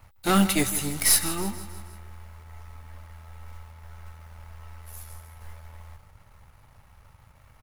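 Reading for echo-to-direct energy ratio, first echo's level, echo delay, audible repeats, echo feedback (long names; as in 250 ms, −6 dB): −13.0 dB, −14.5 dB, 159 ms, 4, 52%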